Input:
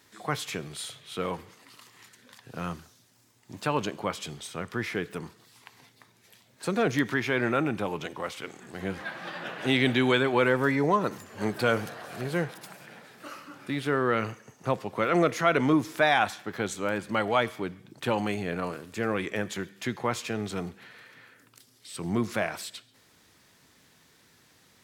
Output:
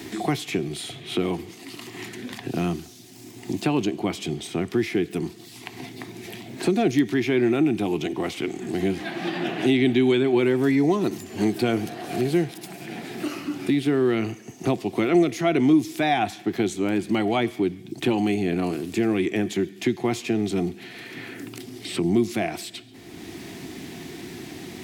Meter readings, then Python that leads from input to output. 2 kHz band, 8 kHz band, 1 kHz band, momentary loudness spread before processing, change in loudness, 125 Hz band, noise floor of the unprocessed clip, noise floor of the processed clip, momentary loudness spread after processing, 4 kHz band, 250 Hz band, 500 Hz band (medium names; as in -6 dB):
-1.5 dB, +3.5 dB, -0.5 dB, 17 LU, +4.5 dB, +4.5 dB, -62 dBFS, -44 dBFS, 17 LU, +2.5 dB, +8.5 dB, +4.5 dB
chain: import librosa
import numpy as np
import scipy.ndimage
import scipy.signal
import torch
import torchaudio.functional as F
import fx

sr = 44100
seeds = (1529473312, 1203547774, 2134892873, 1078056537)

y = fx.band_shelf(x, sr, hz=810.0, db=-12.5, octaves=2.3)
y = fx.small_body(y, sr, hz=(370.0, 700.0), ring_ms=30, db=16)
y = fx.band_squash(y, sr, depth_pct=70)
y = y * 10.0 ** (3.0 / 20.0)